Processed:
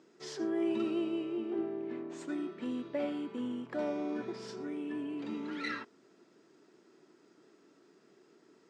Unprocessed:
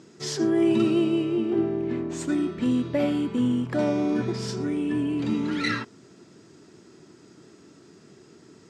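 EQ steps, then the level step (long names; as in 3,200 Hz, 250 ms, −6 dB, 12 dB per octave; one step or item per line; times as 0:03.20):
high-pass filter 310 Hz 12 dB per octave
low-pass filter 3,000 Hz 6 dB per octave
−8.5 dB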